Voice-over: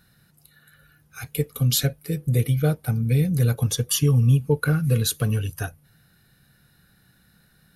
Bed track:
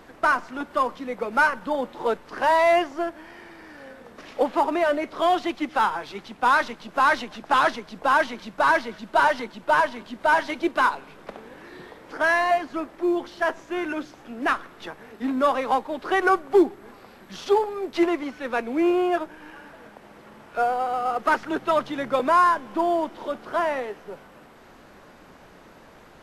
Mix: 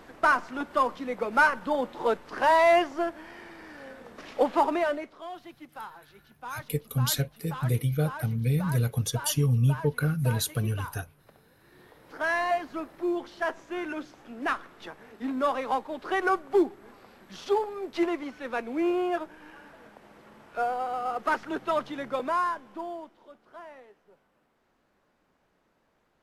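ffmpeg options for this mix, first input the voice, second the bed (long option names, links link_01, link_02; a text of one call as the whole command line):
ffmpeg -i stem1.wav -i stem2.wav -filter_complex "[0:a]adelay=5350,volume=-5.5dB[link_01];[1:a]volume=12.5dB,afade=type=out:start_time=4.65:duration=0.54:silence=0.125893,afade=type=in:start_time=11.58:duration=0.85:silence=0.199526,afade=type=out:start_time=21.83:duration=1.39:silence=0.158489[link_02];[link_01][link_02]amix=inputs=2:normalize=0" out.wav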